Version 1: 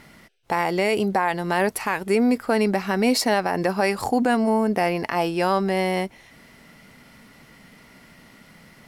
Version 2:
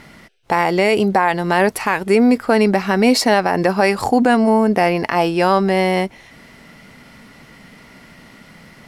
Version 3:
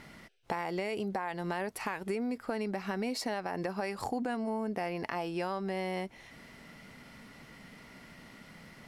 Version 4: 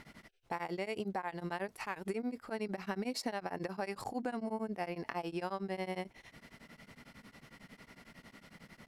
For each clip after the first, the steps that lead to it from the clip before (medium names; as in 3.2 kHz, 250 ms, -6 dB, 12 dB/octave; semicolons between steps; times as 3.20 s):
treble shelf 11 kHz -9 dB; trim +6.5 dB
compression 6:1, threshold -23 dBFS, peak gain reduction 13.5 dB; trim -9 dB
tremolo of two beating tones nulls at 11 Hz; trim -1 dB